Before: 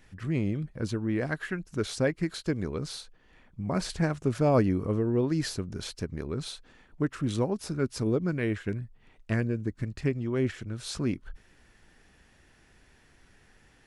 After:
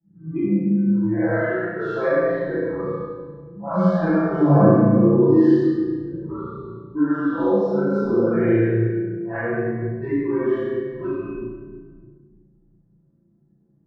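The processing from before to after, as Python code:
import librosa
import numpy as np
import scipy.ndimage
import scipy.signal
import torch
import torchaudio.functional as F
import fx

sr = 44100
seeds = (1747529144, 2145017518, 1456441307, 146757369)

y = fx.phase_scramble(x, sr, seeds[0], window_ms=200)
y = fx.noise_reduce_blind(y, sr, reduce_db=25)
y = scipy.signal.sosfilt(scipy.signal.cheby1(2, 1.0, [170.0, 1400.0], 'bandpass', fs=sr, output='sos'), y)
y = fx.env_lowpass(y, sr, base_hz=330.0, full_db=-30.0)
y = fx.low_shelf(y, sr, hz=210.0, db=11.0)
y = y + 0.96 * np.pad(y, (int(5.9 * sr / 1000.0), 0))[:len(y)]
y = fx.room_flutter(y, sr, wall_m=6.0, rt60_s=0.71)
y = fx.room_shoebox(y, sr, seeds[1], volume_m3=860.0, walls='mixed', distance_m=8.4)
y = fx.band_squash(y, sr, depth_pct=40)
y = y * librosa.db_to_amplitude(-7.0)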